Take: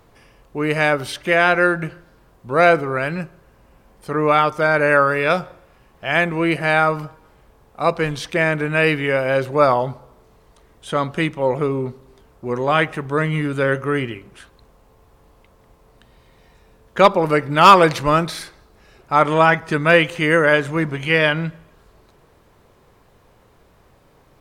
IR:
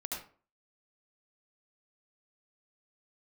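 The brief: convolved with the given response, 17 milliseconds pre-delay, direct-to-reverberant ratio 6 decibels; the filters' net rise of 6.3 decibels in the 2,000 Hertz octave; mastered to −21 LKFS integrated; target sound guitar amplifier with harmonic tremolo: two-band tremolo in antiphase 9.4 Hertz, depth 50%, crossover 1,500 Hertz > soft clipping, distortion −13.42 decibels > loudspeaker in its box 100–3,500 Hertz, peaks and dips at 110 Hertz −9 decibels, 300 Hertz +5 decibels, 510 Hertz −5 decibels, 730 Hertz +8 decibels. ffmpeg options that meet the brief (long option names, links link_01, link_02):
-filter_complex "[0:a]equalizer=frequency=2000:width_type=o:gain=8,asplit=2[link_01][link_02];[1:a]atrim=start_sample=2205,adelay=17[link_03];[link_02][link_03]afir=irnorm=-1:irlink=0,volume=-7dB[link_04];[link_01][link_04]amix=inputs=2:normalize=0,acrossover=split=1500[link_05][link_06];[link_05]aeval=exprs='val(0)*(1-0.5/2+0.5/2*cos(2*PI*9.4*n/s))':channel_layout=same[link_07];[link_06]aeval=exprs='val(0)*(1-0.5/2-0.5/2*cos(2*PI*9.4*n/s))':channel_layout=same[link_08];[link_07][link_08]amix=inputs=2:normalize=0,asoftclip=threshold=-7.5dB,highpass=100,equalizer=frequency=110:width_type=q:width=4:gain=-9,equalizer=frequency=300:width_type=q:width=4:gain=5,equalizer=frequency=510:width_type=q:width=4:gain=-5,equalizer=frequency=730:width_type=q:width=4:gain=8,lowpass=frequency=3500:width=0.5412,lowpass=frequency=3500:width=1.3066,volume=-4dB"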